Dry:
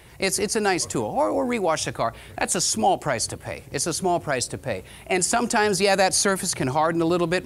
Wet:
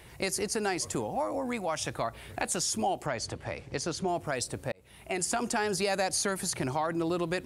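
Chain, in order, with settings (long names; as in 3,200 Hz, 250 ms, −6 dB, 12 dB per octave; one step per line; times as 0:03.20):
0:03.06–0:04.08: low-pass filter 5,500 Hz 12 dB per octave
downward compressor 2 to 1, threshold −28 dBFS, peak gain reduction 7.5 dB
0:01.15–0:01.82: parametric band 390 Hz −12.5 dB 0.31 octaves
0:04.72–0:05.25: fade in
level −3 dB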